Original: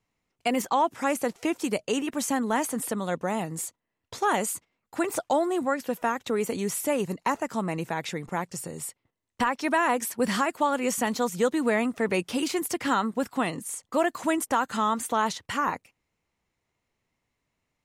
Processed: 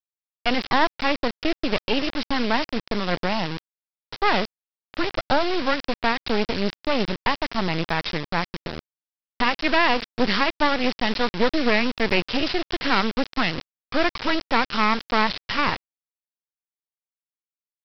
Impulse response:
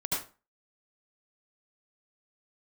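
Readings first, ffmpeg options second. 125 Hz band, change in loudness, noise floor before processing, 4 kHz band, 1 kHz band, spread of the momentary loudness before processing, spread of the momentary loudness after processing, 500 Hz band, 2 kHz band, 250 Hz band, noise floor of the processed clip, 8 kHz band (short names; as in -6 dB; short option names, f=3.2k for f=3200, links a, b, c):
+5.0 dB, +4.0 dB, -81 dBFS, +11.5 dB, +2.5 dB, 7 LU, 7 LU, +2.0 dB, +7.5 dB, +2.5 dB, under -85 dBFS, -16.0 dB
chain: -af "lowshelf=f=340:g=2.5,aresample=11025,acrusher=bits=3:dc=4:mix=0:aa=0.000001,aresample=44100,adynamicequalizer=threshold=0.0112:dfrequency=1600:dqfactor=0.7:tfrequency=1600:tqfactor=0.7:attack=5:release=100:ratio=0.375:range=2.5:mode=boostabove:tftype=highshelf,volume=6dB"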